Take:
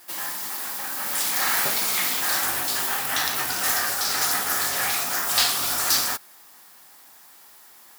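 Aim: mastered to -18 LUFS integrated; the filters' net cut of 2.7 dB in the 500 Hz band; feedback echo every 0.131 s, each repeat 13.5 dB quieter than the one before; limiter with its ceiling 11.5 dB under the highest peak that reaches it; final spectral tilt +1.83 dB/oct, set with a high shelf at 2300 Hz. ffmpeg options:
-af "equalizer=f=500:t=o:g=-4.5,highshelf=f=2.3k:g=8.5,alimiter=limit=-7dB:level=0:latency=1,aecho=1:1:131|262:0.211|0.0444,volume=-2dB"

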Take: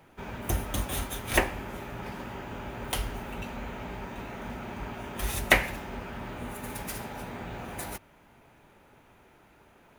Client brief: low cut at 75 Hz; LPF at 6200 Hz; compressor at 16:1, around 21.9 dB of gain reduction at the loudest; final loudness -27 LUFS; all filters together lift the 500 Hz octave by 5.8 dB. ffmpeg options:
-af "highpass=75,lowpass=6.2k,equalizer=f=500:t=o:g=7.5,acompressor=threshold=-38dB:ratio=16,volume=15.5dB"

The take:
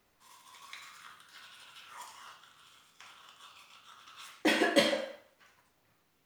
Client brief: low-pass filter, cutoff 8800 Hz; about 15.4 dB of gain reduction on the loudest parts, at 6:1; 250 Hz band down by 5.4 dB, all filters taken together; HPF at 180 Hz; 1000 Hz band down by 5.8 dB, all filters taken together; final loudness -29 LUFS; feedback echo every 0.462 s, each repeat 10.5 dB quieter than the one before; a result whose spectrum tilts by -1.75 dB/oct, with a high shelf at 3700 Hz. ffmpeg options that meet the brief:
-af "highpass=180,lowpass=8.8k,equalizer=f=250:t=o:g=-6,equalizer=f=1k:t=o:g=-7.5,highshelf=f=3.7k:g=-6,acompressor=threshold=-40dB:ratio=6,aecho=1:1:462|924|1386:0.299|0.0896|0.0269,volume=21dB"

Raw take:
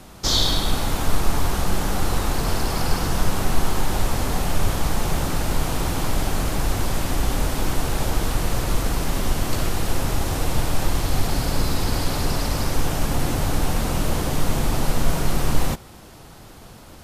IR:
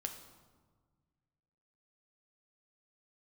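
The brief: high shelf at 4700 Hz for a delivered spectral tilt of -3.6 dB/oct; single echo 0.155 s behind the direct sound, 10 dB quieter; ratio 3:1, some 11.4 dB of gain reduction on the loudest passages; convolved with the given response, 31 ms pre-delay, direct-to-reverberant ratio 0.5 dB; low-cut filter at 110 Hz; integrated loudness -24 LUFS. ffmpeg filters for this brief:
-filter_complex "[0:a]highpass=110,highshelf=f=4.7k:g=4.5,acompressor=threshold=-31dB:ratio=3,aecho=1:1:155:0.316,asplit=2[a][b];[1:a]atrim=start_sample=2205,adelay=31[c];[b][c]afir=irnorm=-1:irlink=0,volume=0.5dB[d];[a][d]amix=inputs=2:normalize=0,volume=4.5dB"

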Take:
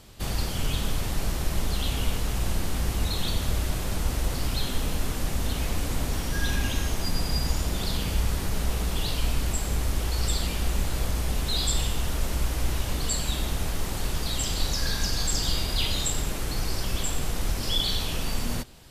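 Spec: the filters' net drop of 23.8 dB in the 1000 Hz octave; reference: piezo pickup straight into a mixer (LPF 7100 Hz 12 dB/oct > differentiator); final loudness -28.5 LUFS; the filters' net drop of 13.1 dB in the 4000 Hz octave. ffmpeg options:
-af "lowpass=7.1k,aderivative,equalizer=f=1k:t=o:g=-8.5,equalizer=f=4k:t=o:g=-9,volume=13dB"

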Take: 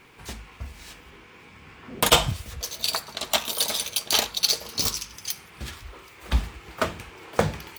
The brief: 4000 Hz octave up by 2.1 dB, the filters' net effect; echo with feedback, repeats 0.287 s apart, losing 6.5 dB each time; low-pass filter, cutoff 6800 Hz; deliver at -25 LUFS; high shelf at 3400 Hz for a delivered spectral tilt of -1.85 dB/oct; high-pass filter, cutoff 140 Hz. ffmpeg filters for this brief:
-af "highpass=140,lowpass=6.8k,highshelf=f=3.4k:g=-6,equalizer=f=4k:t=o:g=7,aecho=1:1:287|574|861|1148|1435|1722:0.473|0.222|0.105|0.0491|0.0231|0.0109,volume=-1dB"

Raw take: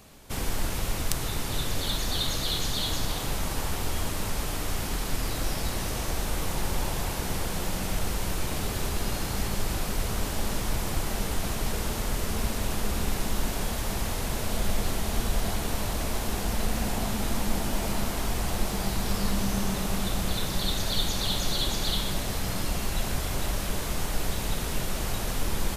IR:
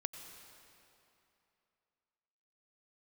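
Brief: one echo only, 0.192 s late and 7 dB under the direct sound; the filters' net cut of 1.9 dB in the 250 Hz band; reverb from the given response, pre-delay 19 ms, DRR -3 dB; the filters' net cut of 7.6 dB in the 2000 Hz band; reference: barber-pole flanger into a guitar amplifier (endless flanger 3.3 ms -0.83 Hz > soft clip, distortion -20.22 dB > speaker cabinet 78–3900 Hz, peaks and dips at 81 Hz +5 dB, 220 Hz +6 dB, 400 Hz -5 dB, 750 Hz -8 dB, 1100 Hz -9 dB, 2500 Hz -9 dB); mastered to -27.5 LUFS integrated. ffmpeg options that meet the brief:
-filter_complex "[0:a]equalizer=f=250:t=o:g=-6.5,equalizer=f=2k:t=o:g=-5.5,aecho=1:1:192:0.447,asplit=2[a][b];[1:a]atrim=start_sample=2205,adelay=19[c];[b][c]afir=irnorm=-1:irlink=0,volume=4dB[d];[a][d]amix=inputs=2:normalize=0,asplit=2[e][f];[f]adelay=3.3,afreqshift=-0.83[g];[e][g]amix=inputs=2:normalize=1,asoftclip=threshold=-16dB,highpass=78,equalizer=f=81:t=q:w=4:g=5,equalizer=f=220:t=q:w=4:g=6,equalizer=f=400:t=q:w=4:g=-5,equalizer=f=750:t=q:w=4:g=-8,equalizer=f=1.1k:t=q:w=4:g=-9,equalizer=f=2.5k:t=q:w=4:g=-9,lowpass=f=3.9k:w=0.5412,lowpass=f=3.9k:w=1.3066,volume=7dB"

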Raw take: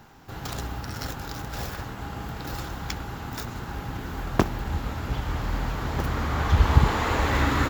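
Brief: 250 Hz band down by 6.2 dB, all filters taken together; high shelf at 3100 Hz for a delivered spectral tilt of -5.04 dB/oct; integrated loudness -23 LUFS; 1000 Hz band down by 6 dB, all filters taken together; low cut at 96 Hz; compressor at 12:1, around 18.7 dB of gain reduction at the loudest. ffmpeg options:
-af "highpass=96,equalizer=f=250:t=o:g=-8,equalizer=f=1k:t=o:g=-6.5,highshelf=f=3.1k:g=-5.5,acompressor=threshold=-35dB:ratio=12,volume=17.5dB"

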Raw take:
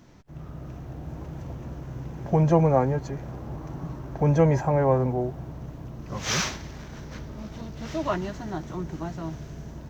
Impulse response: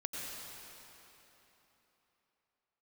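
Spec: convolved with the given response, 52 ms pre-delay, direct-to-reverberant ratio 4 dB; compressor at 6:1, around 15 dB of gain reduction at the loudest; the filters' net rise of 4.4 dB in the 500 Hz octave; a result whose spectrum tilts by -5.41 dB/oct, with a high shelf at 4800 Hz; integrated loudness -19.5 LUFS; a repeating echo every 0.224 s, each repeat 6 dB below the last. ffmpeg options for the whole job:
-filter_complex "[0:a]equalizer=f=500:t=o:g=5,highshelf=f=4.8k:g=7.5,acompressor=threshold=-28dB:ratio=6,aecho=1:1:224|448|672|896|1120|1344:0.501|0.251|0.125|0.0626|0.0313|0.0157,asplit=2[a][b];[1:a]atrim=start_sample=2205,adelay=52[c];[b][c]afir=irnorm=-1:irlink=0,volume=-5.5dB[d];[a][d]amix=inputs=2:normalize=0,volume=12dB"

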